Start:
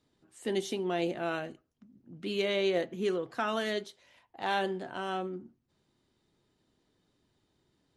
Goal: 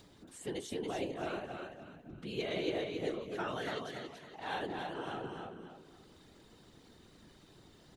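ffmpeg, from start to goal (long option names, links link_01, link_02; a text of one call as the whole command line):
ffmpeg -i in.wav -af "acompressor=mode=upward:threshold=-35dB:ratio=2.5,aecho=1:1:280|560|840|1120:0.596|0.203|0.0689|0.0234,afftfilt=real='hypot(re,im)*cos(2*PI*random(0))':imag='hypot(re,im)*sin(2*PI*random(1))':win_size=512:overlap=0.75,volume=-1.5dB" out.wav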